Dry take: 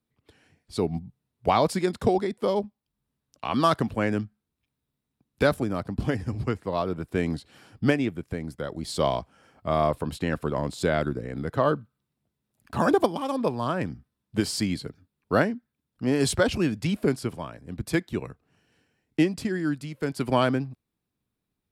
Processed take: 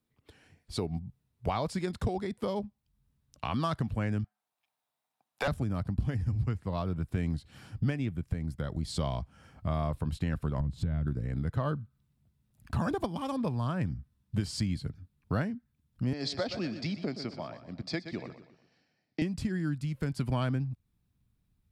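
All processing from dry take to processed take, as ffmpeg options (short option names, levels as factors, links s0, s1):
-filter_complex "[0:a]asettb=1/sr,asplit=3[s0][s1][s2];[s0]atrim=end=4.244[s3];[s1]atrim=start=4.24:end=5.48,asetpts=PTS-STARTPTS,afade=t=in:d=0.004:c=qsin,afade=t=out:st=1.236:d=0.004:c=qsin,highpass=f=740:t=q:w=3.9,volume=6.31,asoftclip=hard,volume=0.158[s4];[s2]atrim=start=5.476[s5];[s3][s4]acrossfade=d=0.004:c1=hsin:c2=qsin[s6];[s6][s5]acrossfade=d=0.004:c1=qsin:c2=hsin,asettb=1/sr,asplit=3[s7][s8][s9];[s7]atrim=end=10.604[s10];[s8]atrim=start=10.6:end=11.07,asetpts=PTS-STARTPTS,afade=t=in:d=0.004:c=qsin,afade=t=out:st=0.466:d=0.004:c=qsin,bass=f=250:g=15,treble=f=4000:g=-11,acompressor=threshold=0.0224:ratio=2.5:attack=3.2:release=140:knee=1:detection=peak[s11];[s9]atrim=start=11.066[s12];[s10][s11]acrossfade=d=0.004:c1=hsin:c2=qsin[s13];[s13][s12]acrossfade=d=0.004:c1=qsin:c2=hsin,asettb=1/sr,asplit=3[s14][s15][s16];[s14]atrim=end=16.134[s17];[s15]atrim=start=16.13:end=19.22,asetpts=PTS-STARTPTS,afade=t=in:d=0.004:c=qsin,afade=t=out:st=3.086:d=0.004:c=qsin,highpass=350,equalizer=f=430:t=q:w=4:g=-4,equalizer=f=650:t=q:w=4:g=5,equalizer=f=1000:t=q:w=4:g=-7,equalizer=f=1500:t=q:w=4:g=-7,equalizer=f=2900:t=q:w=4:g=-9,equalizer=f=4700:t=q:w=4:g=8,lowpass=f=5300:w=0.5412,lowpass=f=5300:w=1.3066,aecho=1:1:121|242|363|484:0.237|0.0949|0.0379|0.0152,atrim=end_sample=136269[s18];[s16]atrim=start=19.216[s19];[s17][s18]acrossfade=d=0.004:c1=hsin:c2=qsin[s20];[s20][s19]acrossfade=d=0.004:c1=qsin:c2=hsin,acrossover=split=9800[s21][s22];[s22]acompressor=threshold=0.00178:ratio=4:attack=1:release=60[s23];[s21][s23]amix=inputs=2:normalize=0,asubboost=boost=6:cutoff=150,acompressor=threshold=0.0251:ratio=2.5"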